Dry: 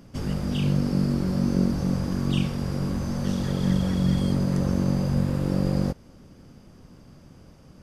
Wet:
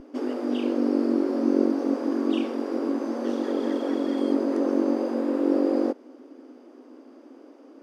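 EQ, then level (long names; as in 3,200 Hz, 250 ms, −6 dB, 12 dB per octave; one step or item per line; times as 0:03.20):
linear-phase brick-wall high-pass 250 Hz
spectral tilt −4.5 dB per octave
+2.5 dB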